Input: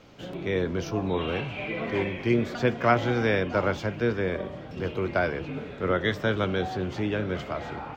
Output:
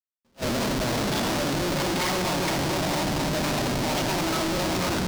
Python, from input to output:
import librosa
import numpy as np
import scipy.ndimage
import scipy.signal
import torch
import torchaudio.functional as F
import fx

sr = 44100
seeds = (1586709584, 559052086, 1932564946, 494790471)

y = fx.speed_glide(x, sr, from_pct=135, to_pct=179)
y = fx.low_shelf(y, sr, hz=73.0, db=5.5)
y = fx.level_steps(y, sr, step_db=18)
y = fx.hum_notches(y, sr, base_hz=50, count=3)
y = fx.echo_alternate(y, sr, ms=229, hz=1200.0, feedback_pct=61, wet_db=-4)
y = fx.room_shoebox(y, sr, seeds[0], volume_m3=2000.0, walls='furnished', distance_m=2.7)
y = fx.schmitt(y, sr, flips_db=-35.5)
y = fx.peak_eq(y, sr, hz=4900.0, db=6.0, octaves=1.2)
y = fx.attack_slew(y, sr, db_per_s=440.0)
y = F.gain(torch.from_numpy(y), 6.0).numpy()